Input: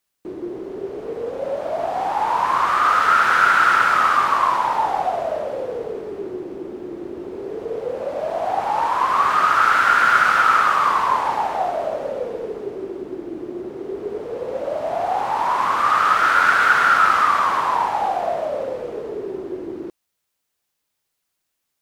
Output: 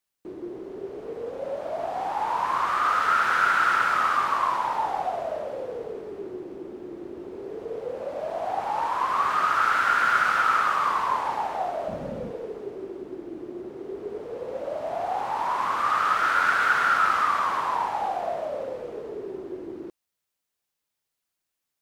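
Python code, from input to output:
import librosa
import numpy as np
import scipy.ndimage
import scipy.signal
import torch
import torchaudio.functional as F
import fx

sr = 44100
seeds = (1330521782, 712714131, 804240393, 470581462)

y = fx.low_shelf_res(x, sr, hz=290.0, db=13.0, q=1.5, at=(11.88, 12.31))
y = y * librosa.db_to_amplitude(-6.5)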